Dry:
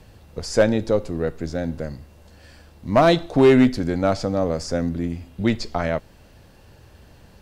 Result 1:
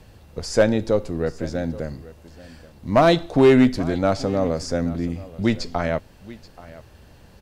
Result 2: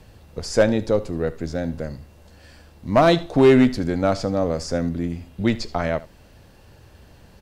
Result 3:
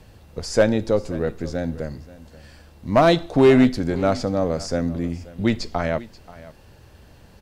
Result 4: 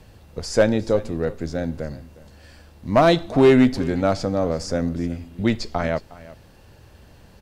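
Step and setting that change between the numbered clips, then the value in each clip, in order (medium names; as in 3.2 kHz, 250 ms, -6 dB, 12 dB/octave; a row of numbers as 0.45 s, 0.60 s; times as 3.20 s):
delay, time: 830 ms, 76 ms, 532 ms, 361 ms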